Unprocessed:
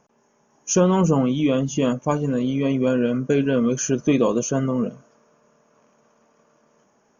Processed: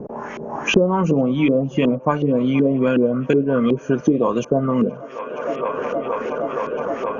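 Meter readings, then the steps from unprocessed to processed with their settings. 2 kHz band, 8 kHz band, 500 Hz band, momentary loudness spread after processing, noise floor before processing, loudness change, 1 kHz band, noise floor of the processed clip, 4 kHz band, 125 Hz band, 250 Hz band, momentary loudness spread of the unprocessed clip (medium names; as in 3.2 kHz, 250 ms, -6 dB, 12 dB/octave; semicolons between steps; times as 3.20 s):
+6.5 dB, no reading, +4.0 dB, 8 LU, -63 dBFS, +1.0 dB, +5.5 dB, -36 dBFS, +3.5 dB, +0.5 dB, +2.5 dB, 5 LU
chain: treble shelf 4.5 kHz +11 dB; LFO low-pass saw up 2.7 Hz 320–3000 Hz; on a send: feedback echo behind a band-pass 470 ms, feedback 82%, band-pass 1.1 kHz, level -24 dB; on the sum: three bands compressed up and down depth 100%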